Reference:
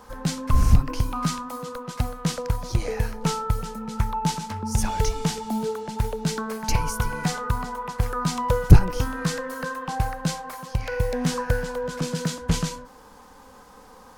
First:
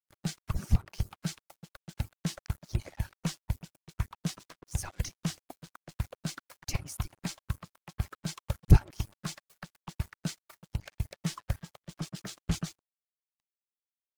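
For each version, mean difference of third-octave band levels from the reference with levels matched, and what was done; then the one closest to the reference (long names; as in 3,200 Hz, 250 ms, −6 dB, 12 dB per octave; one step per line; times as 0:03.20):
10.5 dB: harmonic-percussive split with one part muted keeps percussive
dead-zone distortion −42.5 dBFS
level −7 dB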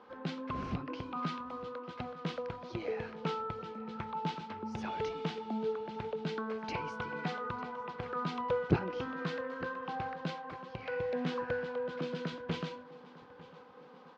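7.5 dB: loudspeaker in its box 230–3,500 Hz, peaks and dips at 360 Hz +5 dB, 930 Hz −4 dB, 1,800 Hz −3 dB
repeating echo 900 ms, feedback 60%, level −20 dB
level −7 dB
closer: second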